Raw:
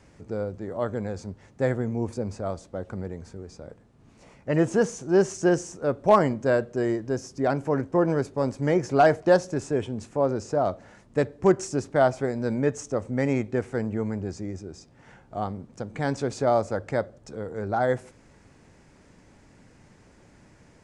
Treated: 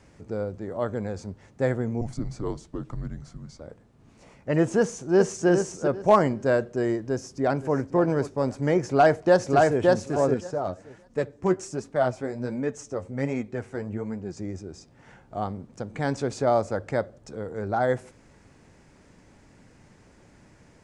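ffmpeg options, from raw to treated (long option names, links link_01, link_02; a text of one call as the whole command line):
ffmpeg -i in.wav -filter_complex "[0:a]asettb=1/sr,asplit=3[link_01][link_02][link_03];[link_01]atrim=end=2.014[link_04];[link_02]atrim=start=2.01:end=3.6,asetpts=PTS-STARTPTS,afade=type=in:duration=0.004:curve=qsin,afade=type=out:start_time=1.586:duration=0.004:curve=qsin,afreqshift=-230[link_05];[link_03]atrim=start=3.596[link_06];[link_04][link_05]acrossfade=duration=0.004:curve1=hsin:curve2=qsin[link_07];[link_07][link_06]acrossfade=duration=0.004:curve1=qsin:curve2=hsin,asplit=2[link_08][link_09];[link_09]afade=type=in:start_time=4.79:duration=0.01,afade=type=out:start_time=5.47:duration=0.01,aecho=0:1:400|800|1200:0.473151|0.118288|0.029572[link_10];[link_08][link_10]amix=inputs=2:normalize=0,asplit=2[link_11][link_12];[link_12]afade=type=in:start_time=6.98:duration=0.01,afade=type=out:start_time=7.75:duration=0.01,aecho=0:1:520|1040|1560:0.188365|0.0565095|0.0169528[link_13];[link_11][link_13]amix=inputs=2:normalize=0,asplit=2[link_14][link_15];[link_15]afade=type=in:start_time=8.82:duration=0.01,afade=type=out:start_time=9.83:duration=0.01,aecho=0:1:570|1140|1710:0.841395|0.126209|0.0189314[link_16];[link_14][link_16]amix=inputs=2:normalize=0,asettb=1/sr,asplit=3[link_17][link_18][link_19];[link_17]atrim=end=10.344[link_20];[link_18]atrim=start=10.34:end=14.37,asetpts=PTS-STARTPTS,afade=type=in:duration=0.004:curve=qsin,afade=type=out:start_time=4.026:duration=0.004:curve=qsin,flanger=delay=4:depth=7.2:regen=38:speed=1.3:shape=sinusoidal[link_21];[link_19]atrim=start=14.366[link_22];[link_20][link_21]acrossfade=duration=0.004:curve1=hsin:curve2=qsin[link_23];[link_23][link_22]acrossfade=duration=0.004:curve1=qsin:curve2=hsin" out.wav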